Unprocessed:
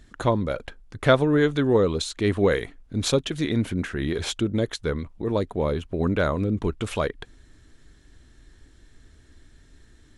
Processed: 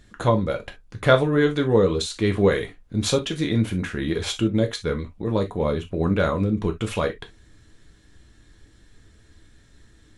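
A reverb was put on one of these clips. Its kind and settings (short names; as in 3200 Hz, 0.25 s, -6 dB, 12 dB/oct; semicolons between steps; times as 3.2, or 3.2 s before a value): non-linear reverb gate 90 ms falling, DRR 4 dB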